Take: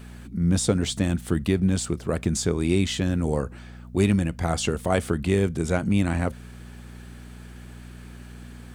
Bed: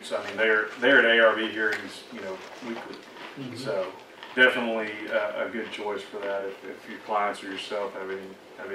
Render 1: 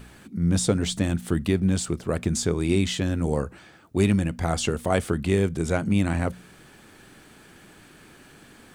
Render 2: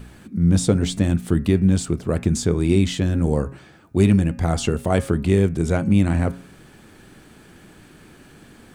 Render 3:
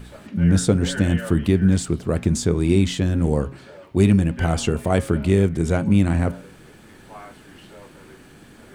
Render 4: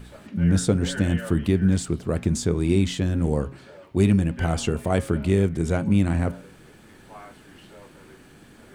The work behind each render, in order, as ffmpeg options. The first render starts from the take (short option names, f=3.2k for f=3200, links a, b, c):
-af "bandreject=f=60:t=h:w=4,bandreject=f=120:t=h:w=4,bandreject=f=180:t=h:w=4,bandreject=f=240:t=h:w=4"
-af "lowshelf=f=460:g=6.5,bandreject=f=136.3:t=h:w=4,bandreject=f=272.6:t=h:w=4,bandreject=f=408.9:t=h:w=4,bandreject=f=545.2:t=h:w=4,bandreject=f=681.5:t=h:w=4,bandreject=f=817.8:t=h:w=4,bandreject=f=954.1:t=h:w=4,bandreject=f=1.0904k:t=h:w=4,bandreject=f=1.2267k:t=h:w=4,bandreject=f=1.363k:t=h:w=4,bandreject=f=1.4993k:t=h:w=4,bandreject=f=1.6356k:t=h:w=4,bandreject=f=1.7719k:t=h:w=4,bandreject=f=1.9082k:t=h:w=4,bandreject=f=2.0445k:t=h:w=4,bandreject=f=2.1808k:t=h:w=4,bandreject=f=2.3171k:t=h:w=4,bandreject=f=2.4534k:t=h:w=4,bandreject=f=2.5897k:t=h:w=4,bandreject=f=2.726k:t=h:w=4"
-filter_complex "[1:a]volume=-15dB[a];[0:a][a]amix=inputs=2:normalize=0"
-af "volume=-3dB"